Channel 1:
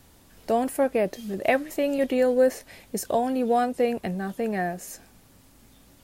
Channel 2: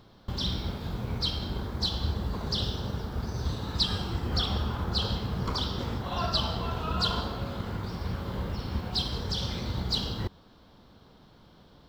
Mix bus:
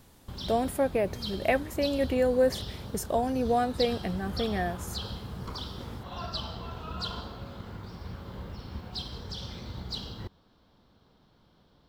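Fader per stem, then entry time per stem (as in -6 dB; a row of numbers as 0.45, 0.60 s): -3.5, -7.5 dB; 0.00, 0.00 s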